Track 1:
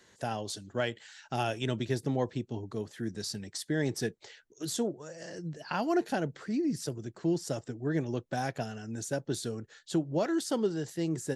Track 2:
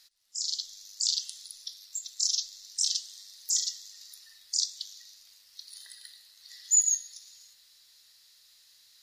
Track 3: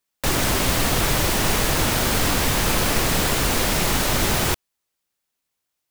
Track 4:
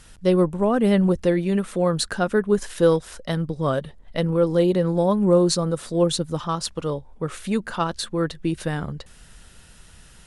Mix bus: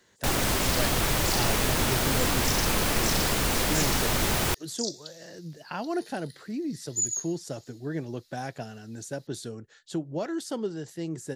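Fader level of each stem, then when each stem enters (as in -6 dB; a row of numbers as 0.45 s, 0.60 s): -2.0 dB, -5.5 dB, -5.0 dB, mute; 0.00 s, 0.25 s, 0.00 s, mute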